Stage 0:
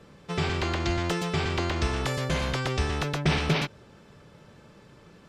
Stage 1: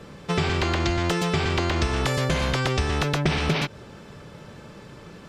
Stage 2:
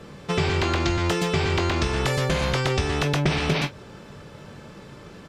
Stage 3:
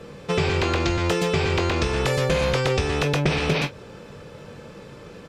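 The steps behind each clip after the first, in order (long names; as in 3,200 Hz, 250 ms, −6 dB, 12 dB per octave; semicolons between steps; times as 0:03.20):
downward compressor, threshold −29 dBFS, peak gain reduction 10 dB; level +9 dB
ambience of single reflections 21 ms −9 dB, 44 ms −16 dB
hollow resonant body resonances 490/2,500 Hz, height 9 dB, ringing for 45 ms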